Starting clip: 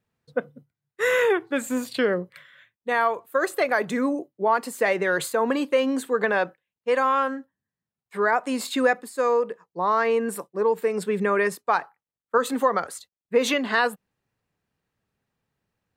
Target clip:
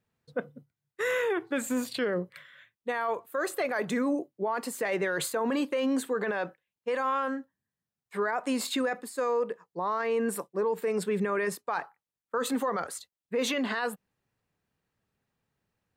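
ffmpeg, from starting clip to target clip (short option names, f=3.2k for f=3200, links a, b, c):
-af "alimiter=limit=-19.5dB:level=0:latency=1:release=13,volume=-1.5dB"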